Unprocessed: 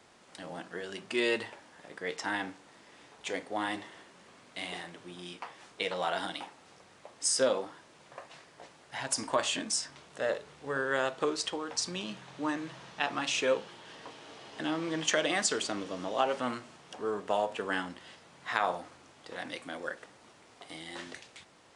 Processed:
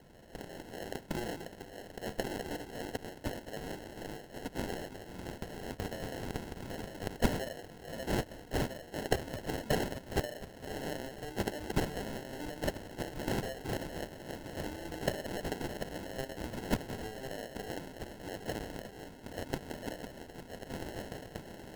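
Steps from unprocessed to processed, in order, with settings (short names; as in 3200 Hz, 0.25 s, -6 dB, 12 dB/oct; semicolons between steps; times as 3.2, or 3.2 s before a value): regenerating reverse delay 0.644 s, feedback 45%, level -7 dB; treble ducked by the level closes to 2800 Hz, closed at -25.5 dBFS; compressor, threshold -33 dBFS, peak gain reduction 11 dB; pre-emphasis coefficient 0.9; sample-and-hold 37×; gain +12 dB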